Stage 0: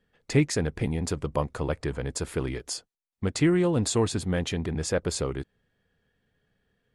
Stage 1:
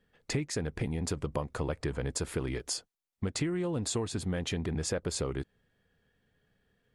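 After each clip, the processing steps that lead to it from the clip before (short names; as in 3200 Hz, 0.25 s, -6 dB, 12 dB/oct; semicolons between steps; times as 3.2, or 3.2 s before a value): compressor 12:1, threshold -28 dBFS, peak gain reduction 13 dB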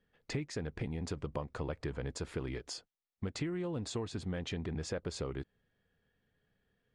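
LPF 5500 Hz 12 dB/oct; gain -5 dB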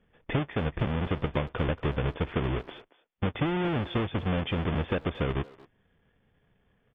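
half-waves squared off; brick-wall FIR low-pass 3600 Hz; speakerphone echo 0.23 s, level -17 dB; gain +5 dB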